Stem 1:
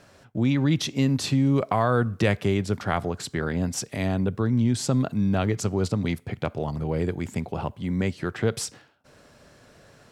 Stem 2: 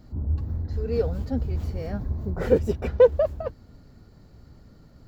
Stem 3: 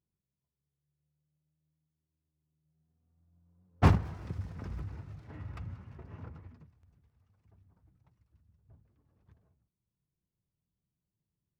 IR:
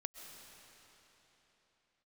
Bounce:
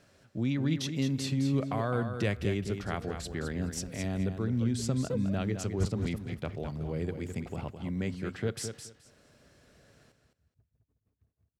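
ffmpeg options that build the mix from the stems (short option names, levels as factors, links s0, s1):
-filter_complex "[0:a]volume=0.422,asplit=3[s0][s1][s2];[s1]volume=0.398[s3];[1:a]adelay=2100,volume=0.15[s4];[2:a]aeval=exprs='val(0)*pow(10,-38*(0.5-0.5*cos(2*PI*6.1*n/s))/20)':c=same,adelay=1900,volume=0.75,asplit=2[s5][s6];[s6]volume=0.631[s7];[s2]apad=whole_len=316582[s8];[s4][s8]sidechaincompress=threshold=0.0178:ratio=8:attack=16:release=175[s9];[s3][s7]amix=inputs=2:normalize=0,aecho=0:1:212|424|636:1|0.18|0.0324[s10];[s0][s9][s5][s10]amix=inputs=4:normalize=0,equalizer=f=930:t=o:w=0.99:g=-5.5"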